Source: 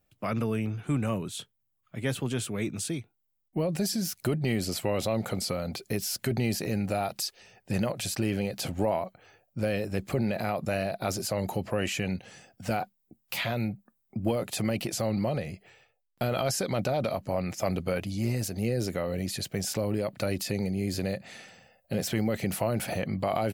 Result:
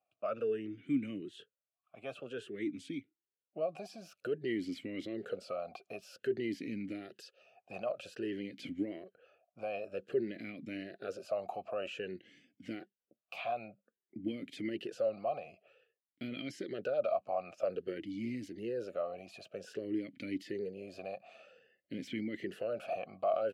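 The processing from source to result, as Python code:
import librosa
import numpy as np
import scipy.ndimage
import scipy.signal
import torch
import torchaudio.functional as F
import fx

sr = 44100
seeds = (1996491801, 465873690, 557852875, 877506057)

y = fx.vowel_sweep(x, sr, vowels='a-i', hz=0.52)
y = F.gain(torch.from_numpy(y), 2.5).numpy()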